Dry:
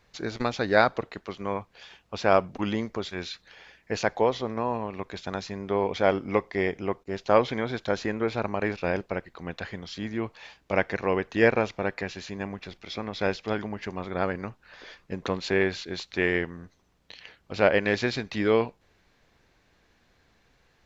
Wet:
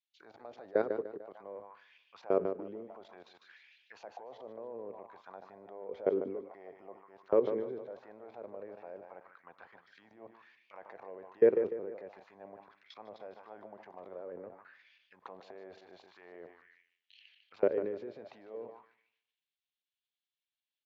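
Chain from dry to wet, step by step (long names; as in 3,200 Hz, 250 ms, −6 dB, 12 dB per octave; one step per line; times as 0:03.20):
output level in coarse steps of 19 dB
repeating echo 149 ms, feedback 45%, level −12 dB
transient designer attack 0 dB, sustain +8 dB
envelope filter 420–3,300 Hz, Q 3.7, down, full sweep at −31.5 dBFS
dynamic equaliser 730 Hz, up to −6 dB, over −49 dBFS, Q 2.1
multiband upward and downward expander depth 40%
level +1 dB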